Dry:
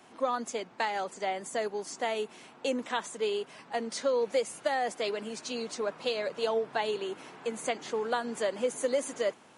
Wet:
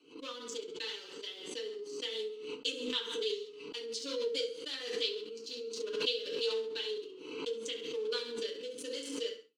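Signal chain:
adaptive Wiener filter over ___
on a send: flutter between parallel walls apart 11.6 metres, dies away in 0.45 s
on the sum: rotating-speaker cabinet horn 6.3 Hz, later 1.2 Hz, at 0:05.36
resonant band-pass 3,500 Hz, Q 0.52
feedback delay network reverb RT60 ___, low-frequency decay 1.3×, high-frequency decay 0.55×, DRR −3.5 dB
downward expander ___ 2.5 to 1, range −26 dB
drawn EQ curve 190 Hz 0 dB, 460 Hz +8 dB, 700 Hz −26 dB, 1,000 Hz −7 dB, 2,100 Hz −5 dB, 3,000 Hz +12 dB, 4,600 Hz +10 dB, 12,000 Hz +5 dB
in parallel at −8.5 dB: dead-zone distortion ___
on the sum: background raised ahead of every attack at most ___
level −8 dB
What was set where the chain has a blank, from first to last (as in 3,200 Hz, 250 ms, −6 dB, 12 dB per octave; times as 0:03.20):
25 samples, 0.4 s, −48 dBFS, −53.5 dBFS, 50 dB per second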